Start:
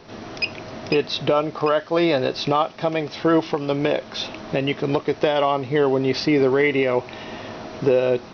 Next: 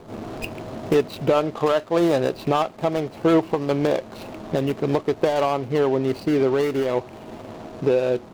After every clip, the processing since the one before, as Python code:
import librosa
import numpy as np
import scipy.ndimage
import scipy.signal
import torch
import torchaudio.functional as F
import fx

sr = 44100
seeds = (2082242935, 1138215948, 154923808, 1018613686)

y = scipy.signal.medfilt(x, 25)
y = fx.rider(y, sr, range_db=4, speed_s=2.0)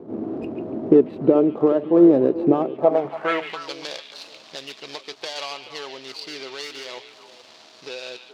y = fx.filter_sweep_bandpass(x, sr, from_hz=310.0, to_hz=4600.0, start_s=2.67, end_s=3.62, q=2.1)
y = fx.echo_stepped(y, sr, ms=143, hz=2800.0, octaves=-1.4, feedback_pct=70, wet_db=-6)
y = y * 10.0 ** (9.0 / 20.0)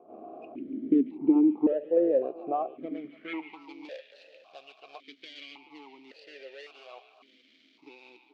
y = fx.vowel_held(x, sr, hz=1.8)